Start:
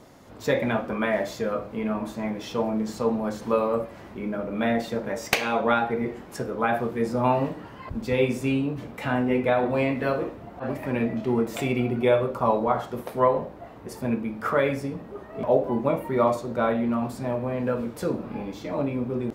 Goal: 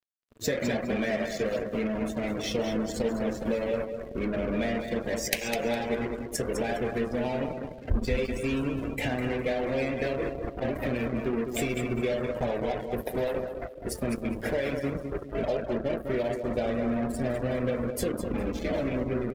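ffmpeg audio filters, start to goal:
ffmpeg -i in.wav -filter_complex "[0:a]acrossover=split=390|6400[link_01][link_02][link_03];[link_03]acontrast=56[link_04];[link_01][link_02][link_04]amix=inputs=3:normalize=0,asuperstop=centerf=1200:order=8:qfactor=1.7,acompressor=threshold=-30dB:ratio=16,asubboost=boost=7:cutoff=52,acrusher=bits=5:mix=0:aa=0.5,equalizer=frequency=830:width_type=o:width=0.25:gain=-7.5,aecho=1:1:205|410|615|820|1025:0.473|0.199|0.0835|0.0351|0.0147,afftdn=noise_reduction=16:noise_floor=-44,volume=5.5dB" out.wav

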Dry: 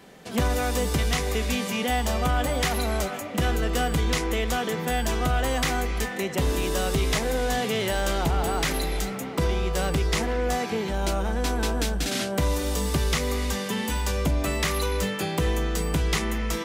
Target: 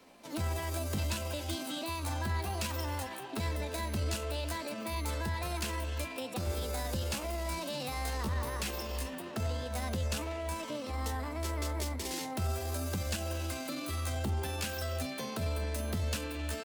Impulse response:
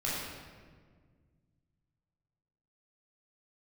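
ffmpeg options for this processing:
-filter_complex "[0:a]flanger=delay=5.4:depth=8.3:regen=-77:speed=0.6:shape=triangular,acrossover=split=140|3000[link_01][link_02][link_03];[link_02]acompressor=threshold=-31dB:ratio=10[link_04];[link_01][link_04][link_03]amix=inputs=3:normalize=0,asetrate=58866,aresample=44100,atempo=0.749154,volume=-4.5dB"

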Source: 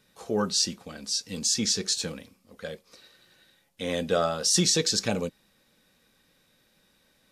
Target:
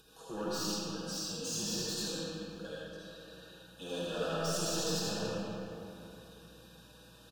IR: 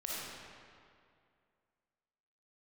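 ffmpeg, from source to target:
-filter_complex "[0:a]highpass=frequency=79:width=0.5412,highpass=frequency=79:width=1.3066,aecho=1:1:6.2:0.71,acompressor=mode=upward:threshold=-40dB:ratio=2.5,aeval=exprs='val(0)+0.001*(sin(2*PI*60*n/s)+sin(2*PI*2*60*n/s)/2+sin(2*PI*3*60*n/s)/3+sin(2*PI*4*60*n/s)/4+sin(2*PI*5*60*n/s)/5)':channel_layout=same,flanger=delay=2.3:depth=9.7:regen=31:speed=0.51:shape=triangular,asoftclip=type=hard:threshold=-31dB,asuperstop=centerf=2100:order=20:qfactor=3.2,asplit=6[link_01][link_02][link_03][link_04][link_05][link_06];[link_02]adelay=213,afreqshift=-100,volume=-23dB[link_07];[link_03]adelay=426,afreqshift=-200,volume=-27dB[link_08];[link_04]adelay=639,afreqshift=-300,volume=-31dB[link_09];[link_05]adelay=852,afreqshift=-400,volume=-35dB[link_10];[link_06]adelay=1065,afreqshift=-500,volume=-39.1dB[link_11];[link_01][link_07][link_08][link_09][link_10][link_11]amix=inputs=6:normalize=0[link_12];[1:a]atrim=start_sample=2205,asetrate=33516,aresample=44100[link_13];[link_12][link_13]afir=irnorm=-1:irlink=0,volume=-5.5dB"

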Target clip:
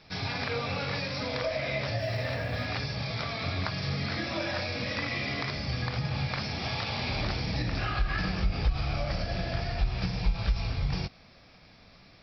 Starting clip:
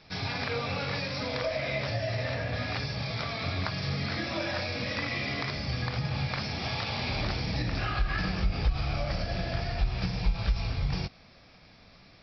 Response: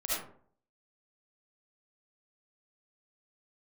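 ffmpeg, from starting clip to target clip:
-filter_complex "[0:a]asplit=3[link_01][link_02][link_03];[link_01]afade=type=out:start_time=1.98:duration=0.02[link_04];[link_02]acrusher=bits=9:mode=log:mix=0:aa=0.000001,afade=type=in:start_time=1.98:duration=0.02,afade=type=out:start_time=2.65:duration=0.02[link_05];[link_03]afade=type=in:start_time=2.65:duration=0.02[link_06];[link_04][link_05][link_06]amix=inputs=3:normalize=0"

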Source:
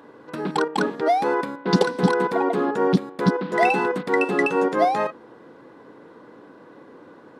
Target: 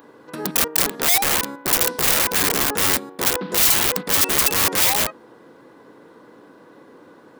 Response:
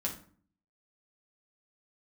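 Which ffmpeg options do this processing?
-af "aeval=exprs='(mod(7.5*val(0)+1,2)-1)/7.5':channel_layout=same,aemphasis=mode=production:type=50kf,volume=-1dB"

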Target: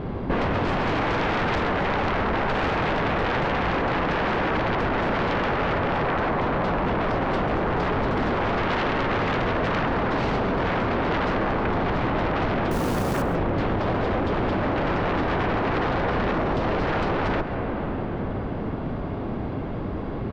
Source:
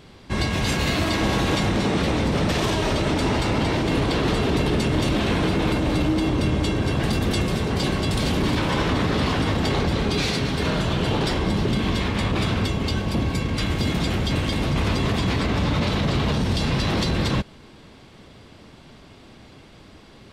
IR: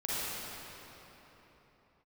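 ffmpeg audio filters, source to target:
-filter_complex "[0:a]lowpass=1100,aeval=exprs='0.237*sin(PI/2*5.01*val(0)/0.237)':channel_layout=same,bandreject=frequency=73.52:width_type=h:width=4,bandreject=frequency=147.04:width_type=h:width=4,bandreject=frequency=220.56:width_type=h:width=4,bandreject=frequency=294.08:width_type=h:width=4,bandreject=frequency=367.6:width_type=h:width=4,bandreject=frequency=441.12:width_type=h:width=4,bandreject=frequency=514.64:width_type=h:width=4,bandreject=frequency=588.16:width_type=h:width=4,bandreject=frequency=661.68:width_type=h:width=4,bandreject=frequency=735.2:width_type=h:width=4,bandreject=frequency=808.72:width_type=h:width=4,bandreject=frequency=882.24:width_type=h:width=4,bandreject=frequency=955.76:width_type=h:width=4,bandreject=frequency=1029.28:width_type=h:width=4,bandreject=frequency=1102.8:width_type=h:width=4,bandreject=frequency=1176.32:width_type=h:width=4,bandreject=frequency=1249.84:width_type=h:width=4,bandreject=frequency=1323.36:width_type=h:width=4,bandreject=frequency=1396.88:width_type=h:width=4,bandreject=frequency=1470.4:width_type=h:width=4,bandreject=frequency=1543.92:width_type=h:width=4,bandreject=frequency=1617.44:width_type=h:width=4,bandreject=frequency=1690.96:width_type=h:width=4,bandreject=frequency=1764.48:width_type=h:width=4,bandreject=frequency=1838:width_type=h:width=4,bandreject=frequency=1911.52:width_type=h:width=4,bandreject=frequency=1985.04:width_type=h:width=4,bandreject=frequency=2058.56:width_type=h:width=4,bandreject=frequency=2132.08:width_type=h:width=4,bandreject=frequency=2205.6:width_type=h:width=4,bandreject=frequency=2279.12:width_type=h:width=4,bandreject=frequency=2352.64:width_type=h:width=4,bandreject=frequency=2426.16:width_type=h:width=4,bandreject=frequency=2499.68:width_type=h:width=4,bandreject=frequency=2573.2:width_type=h:width=4,bandreject=frequency=2646.72:width_type=h:width=4,asplit=2[link_01][link_02];[1:a]atrim=start_sample=2205,asetrate=25578,aresample=44100,lowpass=3300[link_03];[link_02][link_03]afir=irnorm=-1:irlink=0,volume=-23dB[link_04];[link_01][link_04]amix=inputs=2:normalize=0,asettb=1/sr,asplit=3[link_05][link_06][link_07];[link_05]atrim=end=12.714[link_08];[link_06]atrim=start=12.71:end=13.22,asetpts=PTS-STARTPTS,afade=type=in:duration=0.004:curve=qsin,afade=type=out:start_time=0.506:duration=0.004:curve=qsin,acrusher=bits=3:mode=log:mix=0:aa=0.000001[link_09];[link_07]atrim=start=13.216[link_10];[link_08][link_09]acrossfade=duration=0.004:curve1=hsin:curve2=qsin[link_11];[link_11][link_10]acrossfade=duration=0.004:curve1=qsin:curve2=hsin,aecho=1:1:134:0.158,acompressor=threshold=-22dB:ratio=6"

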